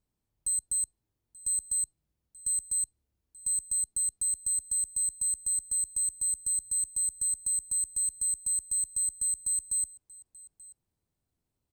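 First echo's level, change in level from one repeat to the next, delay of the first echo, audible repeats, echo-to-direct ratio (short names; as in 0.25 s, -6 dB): -21.5 dB, no steady repeat, 0.883 s, 1, -21.5 dB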